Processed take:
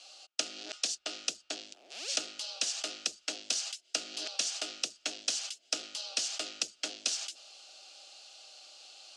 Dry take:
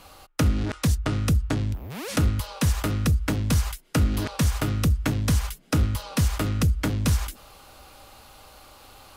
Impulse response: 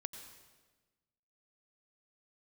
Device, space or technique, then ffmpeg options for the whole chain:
phone speaker on a table: -af "highpass=f=410:w=0.5412,highpass=f=410:w=1.3066,equalizer=f=450:t=q:w=4:g=-6,equalizer=f=690:t=q:w=4:g=6,equalizer=f=1000:t=q:w=4:g=-8,equalizer=f=2700:t=q:w=4:g=5,equalizer=f=3800:t=q:w=4:g=-5,lowpass=f=6500:w=0.5412,lowpass=f=6500:w=1.3066,equalizer=f=125:t=o:w=1:g=-12,equalizer=f=250:t=o:w=1:g=-5,equalizer=f=500:t=o:w=1:g=-6,equalizer=f=1000:t=o:w=1:g=-11,equalizer=f=2000:t=o:w=1:g=-11,equalizer=f=4000:t=o:w=1:g=8,equalizer=f=8000:t=o:w=1:g=8,volume=0.841"

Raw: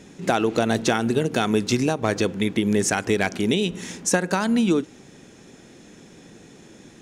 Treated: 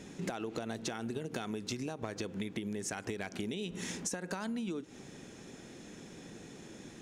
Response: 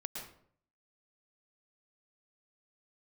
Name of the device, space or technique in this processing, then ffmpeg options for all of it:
serial compression, leveller first: -af "acompressor=threshold=0.0631:ratio=3,acompressor=threshold=0.0251:ratio=6,volume=0.708"

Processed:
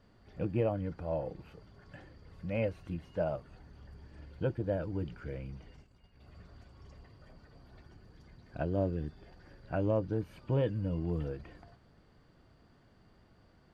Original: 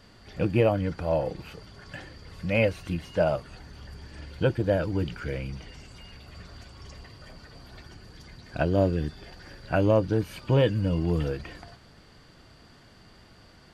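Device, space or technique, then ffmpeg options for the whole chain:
through cloth: -filter_complex "[0:a]highshelf=f=1900:g=-12,asplit=3[s0][s1][s2];[s0]afade=t=out:st=5.76:d=0.02[s3];[s1]agate=range=0.316:threshold=0.00562:ratio=16:detection=peak,afade=t=in:st=5.76:d=0.02,afade=t=out:st=6.19:d=0.02[s4];[s2]afade=t=in:st=6.19:d=0.02[s5];[s3][s4][s5]amix=inputs=3:normalize=0,volume=0.398"

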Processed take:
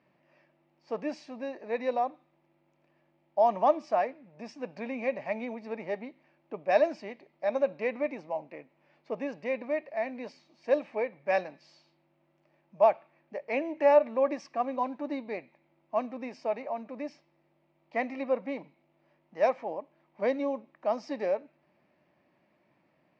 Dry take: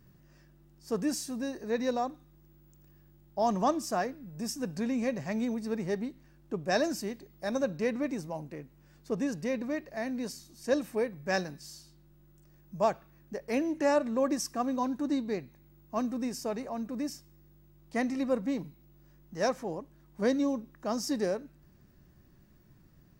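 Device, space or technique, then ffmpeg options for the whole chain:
phone earpiece: -af "highpass=350,equalizer=f=390:t=q:w=4:g=-5,equalizer=f=610:t=q:w=4:g=8,equalizer=f=870:t=q:w=4:g=5,equalizer=f=1500:t=q:w=4:g=-6,equalizer=f=2300:t=q:w=4:g=8,equalizer=f=3600:t=q:w=4:g=-5,lowpass=f=3700:w=0.5412,lowpass=f=3700:w=1.3066"

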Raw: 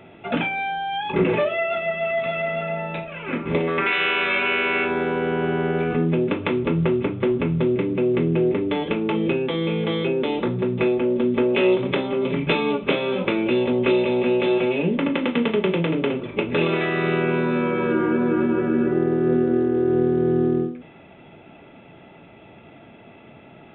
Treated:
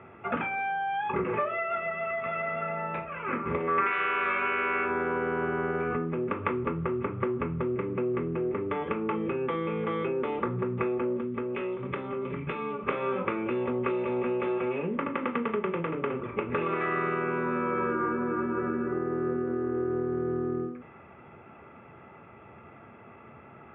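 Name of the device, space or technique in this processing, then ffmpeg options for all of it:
bass amplifier: -filter_complex "[0:a]acompressor=threshold=0.0794:ratio=6,highpass=67,equalizer=f=75:t=q:w=4:g=5,equalizer=f=170:t=q:w=4:g=-6,equalizer=f=290:t=q:w=4:g=-8,equalizer=f=650:t=q:w=4:g=-6,equalizer=f=1200:t=q:w=4:g=10,lowpass=f=2200:w=0.5412,lowpass=f=2200:w=1.3066,asettb=1/sr,asplit=3[s0][s1][s2];[s0]atrim=end=11.194[s3];[s1]atrim=start=11.19:end=12.79,asetpts=PTS-STARTPTS,afade=t=in:d=0.004:c=qsin,afade=t=out:st=1.596:d=0.004:c=qsin,equalizer=f=860:t=o:w=2.9:g=-6[s4];[s2]atrim=start=12.786[s5];[s3][s4]acrossfade=d=0.004:c1=hsin:c2=qsin[s6];[s6][s5]acrossfade=d=0.004:c1=qsin:c2=hsin,volume=0.794"

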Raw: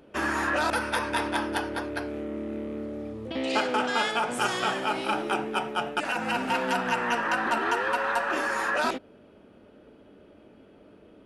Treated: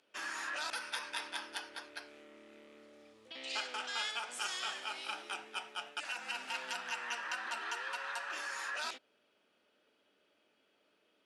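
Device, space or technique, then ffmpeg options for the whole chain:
piezo pickup straight into a mixer: -af "lowpass=5900,aderivative,volume=1.12"

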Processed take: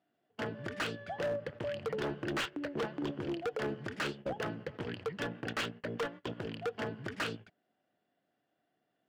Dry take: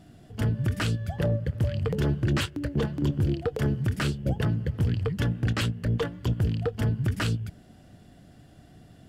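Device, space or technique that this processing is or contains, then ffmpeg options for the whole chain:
walkie-talkie: -af "highpass=440,lowpass=2900,asoftclip=type=hard:threshold=0.0251,agate=range=0.0891:threshold=0.00398:ratio=16:detection=peak,volume=1.19"

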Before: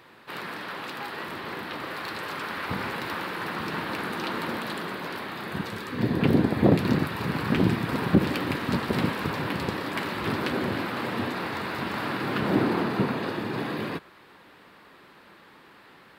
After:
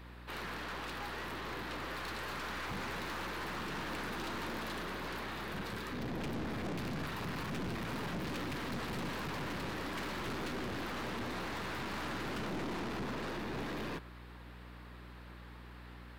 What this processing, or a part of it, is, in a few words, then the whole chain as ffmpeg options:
valve amplifier with mains hum: -af "aeval=exprs='(tanh(56.2*val(0)+0.4)-tanh(0.4))/56.2':c=same,aeval=exprs='val(0)+0.00398*(sin(2*PI*60*n/s)+sin(2*PI*2*60*n/s)/2+sin(2*PI*3*60*n/s)/3+sin(2*PI*4*60*n/s)/4+sin(2*PI*5*60*n/s)/5)':c=same,volume=0.75"

